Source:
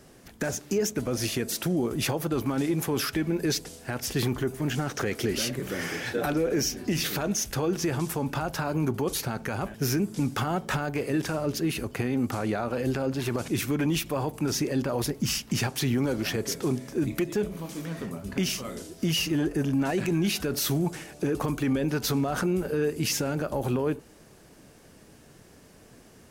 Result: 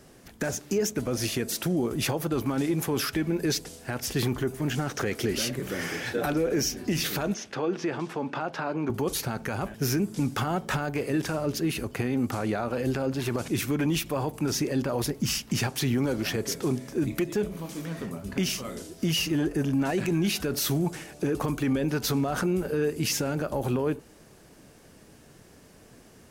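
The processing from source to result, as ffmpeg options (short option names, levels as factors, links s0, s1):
-filter_complex "[0:a]asettb=1/sr,asplit=3[s0][s1][s2];[s0]atrim=end=7.344[s3];[s1]atrim=start=7.34:end=8.9,asetpts=PTS-STARTPTS,afade=t=in:d=0.004:c=qsin,afade=t=out:st=1.556:d=0.004:c=qsin,highpass=230,lowpass=3500[s4];[s2]atrim=start=8.896[s5];[s3][s4]acrossfade=d=0.004:c1=hsin:c2=qsin[s6];[s6][s5]acrossfade=d=0.004:c1=qsin:c2=hsin"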